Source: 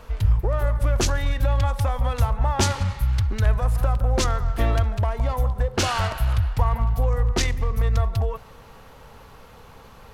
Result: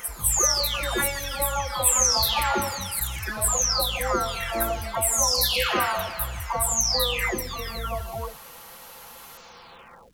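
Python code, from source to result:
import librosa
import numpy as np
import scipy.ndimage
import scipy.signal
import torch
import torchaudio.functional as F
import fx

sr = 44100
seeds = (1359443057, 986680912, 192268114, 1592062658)

y = fx.spec_delay(x, sr, highs='early', ms=765)
y = fx.riaa(y, sr, side='recording')
y = fx.dmg_crackle(y, sr, seeds[0], per_s=550.0, level_db=-55.0)
y = y * librosa.db_to_amplitude(3.5)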